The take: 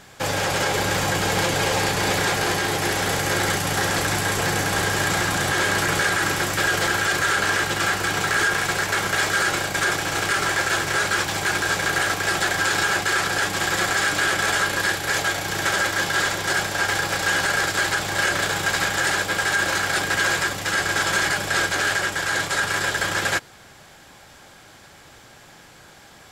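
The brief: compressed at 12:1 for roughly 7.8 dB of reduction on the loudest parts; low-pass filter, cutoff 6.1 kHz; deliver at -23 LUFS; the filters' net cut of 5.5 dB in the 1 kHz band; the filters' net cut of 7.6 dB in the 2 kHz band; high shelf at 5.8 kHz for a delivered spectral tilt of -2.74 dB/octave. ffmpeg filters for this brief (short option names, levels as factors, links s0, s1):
-af "lowpass=6100,equalizer=f=1000:t=o:g=-5,equalizer=f=2000:t=o:g=-8.5,highshelf=f=5800:g=4,acompressor=threshold=0.0355:ratio=12,volume=2.82"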